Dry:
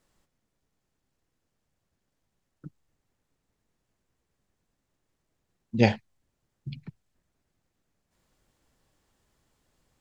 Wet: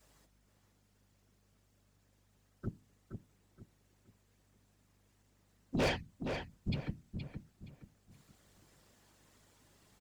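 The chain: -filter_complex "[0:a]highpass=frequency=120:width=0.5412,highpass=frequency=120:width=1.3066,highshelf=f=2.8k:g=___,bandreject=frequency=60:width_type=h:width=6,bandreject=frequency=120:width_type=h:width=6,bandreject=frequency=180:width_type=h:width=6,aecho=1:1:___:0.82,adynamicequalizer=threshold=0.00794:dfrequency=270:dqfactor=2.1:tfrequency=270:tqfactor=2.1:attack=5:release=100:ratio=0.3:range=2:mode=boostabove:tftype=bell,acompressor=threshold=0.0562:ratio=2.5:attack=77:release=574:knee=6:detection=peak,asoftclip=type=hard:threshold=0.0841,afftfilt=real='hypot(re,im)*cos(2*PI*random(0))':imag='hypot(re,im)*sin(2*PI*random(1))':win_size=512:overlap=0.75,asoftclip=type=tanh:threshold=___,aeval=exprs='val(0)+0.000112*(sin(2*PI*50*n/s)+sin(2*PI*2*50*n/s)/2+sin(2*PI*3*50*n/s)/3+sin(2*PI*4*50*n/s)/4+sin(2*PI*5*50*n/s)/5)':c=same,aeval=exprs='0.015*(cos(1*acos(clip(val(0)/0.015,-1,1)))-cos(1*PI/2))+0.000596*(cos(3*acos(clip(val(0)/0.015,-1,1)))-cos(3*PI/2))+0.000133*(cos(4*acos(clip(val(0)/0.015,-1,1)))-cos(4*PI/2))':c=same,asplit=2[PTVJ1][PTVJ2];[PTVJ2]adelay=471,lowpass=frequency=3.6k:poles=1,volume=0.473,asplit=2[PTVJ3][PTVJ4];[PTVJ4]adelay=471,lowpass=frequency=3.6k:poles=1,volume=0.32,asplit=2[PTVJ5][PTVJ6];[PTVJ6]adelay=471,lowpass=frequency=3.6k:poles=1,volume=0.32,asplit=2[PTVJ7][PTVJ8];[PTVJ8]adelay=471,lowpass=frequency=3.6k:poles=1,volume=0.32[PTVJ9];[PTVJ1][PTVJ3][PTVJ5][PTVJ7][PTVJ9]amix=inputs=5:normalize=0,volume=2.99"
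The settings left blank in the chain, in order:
3, 6.9, 0.0141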